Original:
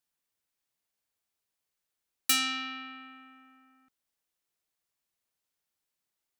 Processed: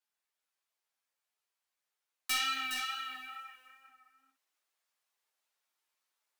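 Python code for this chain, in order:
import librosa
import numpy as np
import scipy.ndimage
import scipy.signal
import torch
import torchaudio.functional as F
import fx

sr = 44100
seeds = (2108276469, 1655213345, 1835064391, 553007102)

p1 = scipy.signal.sosfilt(scipy.signal.butter(2, 760.0, 'highpass', fs=sr, output='sos'), x)
p2 = fx.tilt_eq(p1, sr, slope=-2.0)
p3 = fx.rider(p2, sr, range_db=10, speed_s=0.5)
p4 = p2 + (p3 * librosa.db_to_amplitude(-0.5))
p5 = fx.wow_flutter(p4, sr, seeds[0], rate_hz=2.1, depth_cents=27.0)
p6 = fx.quant_float(p5, sr, bits=2)
p7 = 10.0 ** (-23.0 / 20.0) * np.tanh(p6 / 10.0 ** (-23.0 / 20.0))
p8 = fx.echo_multitap(p7, sr, ms=(56, 415, 467), db=(-11.0, -7.5, -13.5))
y = fx.ensemble(p8, sr)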